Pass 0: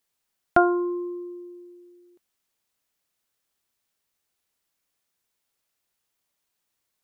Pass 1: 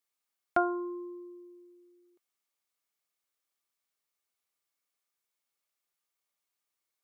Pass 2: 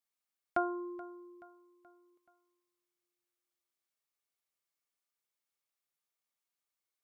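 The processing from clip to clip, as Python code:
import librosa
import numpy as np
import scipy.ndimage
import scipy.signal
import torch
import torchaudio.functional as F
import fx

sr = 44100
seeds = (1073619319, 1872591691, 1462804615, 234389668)

y1 = fx.bass_treble(x, sr, bass_db=-8, treble_db=1)
y1 = fx.small_body(y1, sr, hz=(1200.0, 2200.0), ring_ms=45, db=9)
y1 = y1 * librosa.db_to_amplitude(-8.5)
y2 = fx.echo_feedback(y1, sr, ms=428, feedback_pct=46, wet_db=-19.0)
y2 = y2 * librosa.db_to_amplitude(-5.0)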